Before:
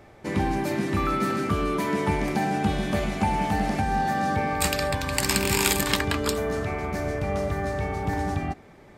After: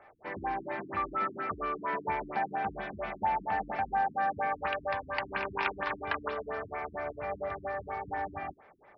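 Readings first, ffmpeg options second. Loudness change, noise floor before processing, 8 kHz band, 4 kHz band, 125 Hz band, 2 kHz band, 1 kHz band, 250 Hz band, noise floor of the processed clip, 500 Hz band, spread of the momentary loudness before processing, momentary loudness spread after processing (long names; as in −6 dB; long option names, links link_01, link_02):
−8.5 dB, −50 dBFS, below −40 dB, −18.0 dB, −20.5 dB, −6.5 dB, −4.0 dB, −17.5 dB, −58 dBFS, −9.0 dB, 6 LU, 7 LU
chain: -filter_complex "[0:a]acrossover=split=570 2400:gain=0.0891 1 0.1[link_01][link_02][link_03];[link_01][link_02][link_03]amix=inputs=3:normalize=0,afftfilt=real='re*lt(b*sr/1024,320*pow(6100/320,0.5+0.5*sin(2*PI*4.3*pts/sr)))':imag='im*lt(b*sr/1024,320*pow(6100/320,0.5+0.5*sin(2*PI*4.3*pts/sr)))':win_size=1024:overlap=0.75"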